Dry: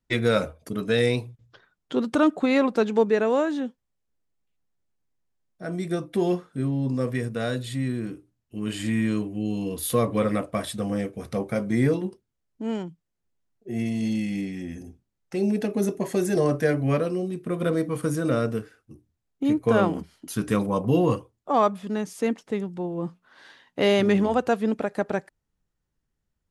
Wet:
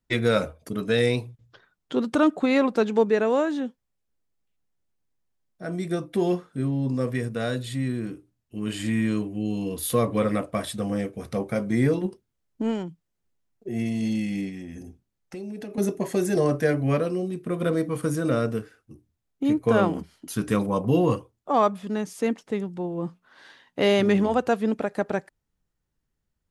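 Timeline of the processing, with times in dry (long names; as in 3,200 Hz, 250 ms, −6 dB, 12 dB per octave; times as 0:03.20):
0:11.96–0:13.69: transient designer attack +7 dB, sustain +2 dB
0:14.49–0:15.78: downward compressor, threshold −33 dBFS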